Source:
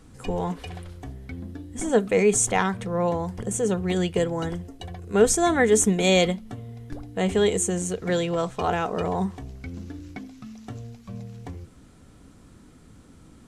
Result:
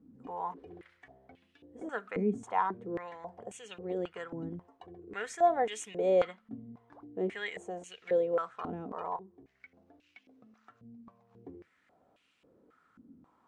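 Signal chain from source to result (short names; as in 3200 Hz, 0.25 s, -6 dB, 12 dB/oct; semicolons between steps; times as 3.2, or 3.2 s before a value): 9.16–11.31 compressor 6:1, threshold -39 dBFS, peak gain reduction 15.5 dB; stepped band-pass 3.7 Hz 250–2700 Hz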